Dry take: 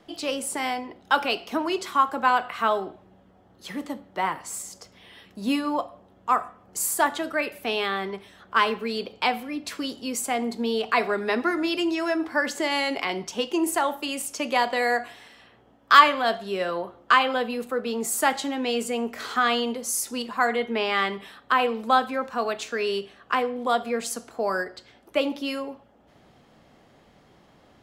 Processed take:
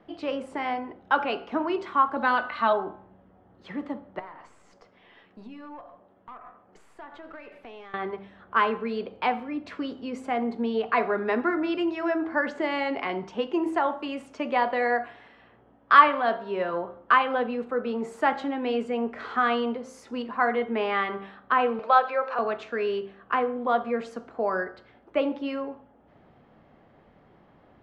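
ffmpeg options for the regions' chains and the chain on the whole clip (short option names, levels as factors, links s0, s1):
-filter_complex "[0:a]asettb=1/sr,asplit=3[s0][s1][s2];[s0]atrim=end=2.164[s3];[s1]atrim=start=2.16:end=2.73,asetpts=PTS-STARTPTS,afade=t=in:d=0.004:c=qsin,afade=t=out:st=0.566:d=0.004:c=qsin,equalizer=f=4200:t=o:w=0.44:g=14.5,aecho=1:1:3.4:0.58,atrim=end_sample=25137[s4];[s2]atrim=start=2.726[s5];[s3][s4]acrossfade=d=0.004:c1=hsin:c2=qsin[s6];[s6][s5]acrossfade=d=0.004:c1=qsin:c2=hsin,asettb=1/sr,asplit=3[s7][s8][s9];[s7]atrim=end=4.194[s10];[s8]atrim=start=4.19:end=7.94,asetpts=PTS-STARTPTS,afade=t=in:d=0.004:c=qsin,afade=t=out:st=3.746:d=0.004:c=qsin,highpass=f=300:p=1,acompressor=threshold=0.0158:ratio=8:attack=3.2:release=140:knee=1:detection=peak,aeval=exprs='(tanh(56.2*val(0)+0.4)-tanh(0.4))/56.2':c=same[s11];[s9]atrim=start=7.936[s12];[s10][s11]acrossfade=d=0.004:c1=hsin:c2=qsin[s13];[s13][s12]acrossfade=d=0.004:c1=qsin:c2=hsin,asettb=1/sr,asplit=3[s14][s15][s16];[s14]atrim=end=16.084[s17];[s15]atrim=start=16.08:end=16.74,asetpts=PTS-STARTPTS,afade=t=in:d=0.004:c=qsin,afade=t=out:st=0.656:d=0.004:c=qsin,highpass=f=110:p=1,aeval=exprs='val(0)+0.00562*sin(2*PI*950*n/s)':c=same[s18];[s16]atrim=start=16.736[s19];[s17][s18]acrossfade=d=0.004:c1=hsin:c2=qsin[s20];[s20][s19]acrossfade=d=0.004:c1=qsin:c2=hsin,asettb=1/sr,asplit=3[s21][s22][s23];[s21]atrim=end=21.794[s24];[s22]atrim=start=21.79:end=22.39,asetpts=PTS-STARTPTS,afade=t=in:d=0.004:c=qsin,afade=t=out:st=0.596:d=0.004:c=qsin,acompressor=mode=upward:threshold=0.0631:ratio=2.5:attack=3.2:release=140:knee=2.83:detection=peak,highpass=f=420:w=0.5412,highpass=f=420:w=1.3066,equalizer=f=580:t=q:w=4:g=5,equalizer=f=1300:t=q:w=4:g=3,equalizer=f=2500:t=q:w=4:g=6,equalizer=f=4400:t=q:w=4:g=8,equalizer=f=8200:t=q:w=4:g=-6,lowpass=f=8900:w=0.5412,lowpass=f=8900:w=1.3066[s25];[s23]atrim=start=22.386[s26];[s24][s25]acrossfade=d=0.004:c1=hsin:c2=qsin[s27];[s27][s26]acrossfade=d=0.004:c1=qsin:c2=hsin,lowpass=1900,bandreject=f=65.29:t=h:w=4,bandreject=f=130.58:t=h:w=4,bandreject=f=195.87:t=h:w=4,bandreject=f=261.16:t=h:w=4,bandreject=f=326.45:t=h:w=4,bandreject=f=391.74:t=h:w=4,bandreject=f=457.03:t=h:w=4,bandreject=f=522.32:t=h:w=4,bandreject=f=587.61:t=h:w=4,bandreject=f=652.9:t=h:w=4,bandreject=f=718.19:t=h:w=4,bandreject=f=783.48:t=h:w=4,bandreject=f=848.77:t=h:w=4,bandreject=f=914.06:t=h:w=4,bandreject=f=979.35:t=h:w=4,bandreject=f=1044.64:t=h:w=4,bandreject=f=1109.93:t=h:w=4,bandreject=f=1175.22:t=h:w=4,bandreject=f=1240.51:t=h:w=4,bandreject=f=1305.8:t=h:w=4,bandreject=f=1371.09:t=h:w=4,bandreject=f=1436.38:t=h:w=4,bandreject=f=1501.67:t=h:w=4,bandreject=f=1566.96:t=h:w=4,bandreject=f=1632.25:t=h:w=4"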